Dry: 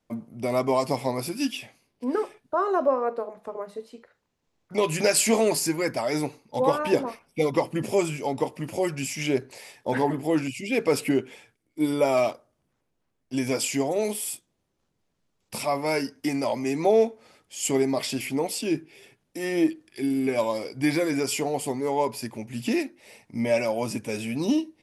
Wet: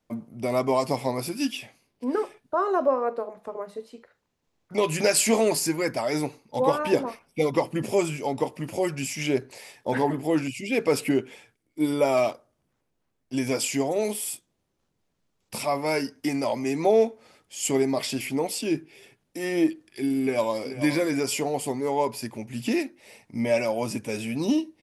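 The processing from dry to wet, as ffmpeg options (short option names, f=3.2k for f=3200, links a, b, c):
-filter_complex "[0:a]asplit=2[a][b];[b]afade=t=in:st=20.22:d=0.01,afade=t=out:st=20.66:d=0.01,aecho=0:1:430|860:0.266073|0.0266073[c];[a][c]amix=inputs=2:normalize=0"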